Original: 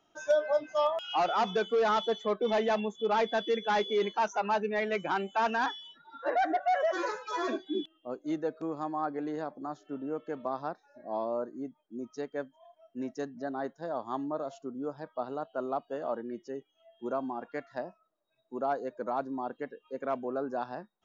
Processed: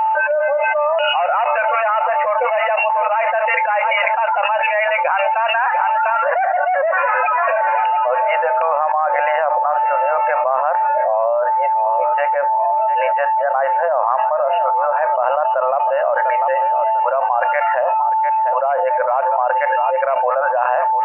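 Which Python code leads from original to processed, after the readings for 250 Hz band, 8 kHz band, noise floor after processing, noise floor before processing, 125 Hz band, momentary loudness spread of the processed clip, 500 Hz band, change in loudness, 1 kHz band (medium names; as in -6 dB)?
under -20 dB, no reading, -19 dBFS, -73 dBFS, under -15 dB, 1 LU, +13.5 dB, +16.0 dB, +19.0 dB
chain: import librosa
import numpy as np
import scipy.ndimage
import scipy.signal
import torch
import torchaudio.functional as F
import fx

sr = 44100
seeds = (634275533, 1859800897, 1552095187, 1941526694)

y = x + 10.0 ** (-50.0 / 20.0) * np.sin(2.0 * np.pi * 880.0 * np.arange(len(x)) / sr)
y = fx.brickwall_bandpass(y, sr, low_hz=510.0, high_hz=2900.0)
y = fx.echo_feedback(y, sr, ms=697, feedback_pct=32, wet_db=-24.0)
y = fx.env_flatten(y, sr, amount_pct=100)
y = y * 10.0 ** (5.0 / 20.0)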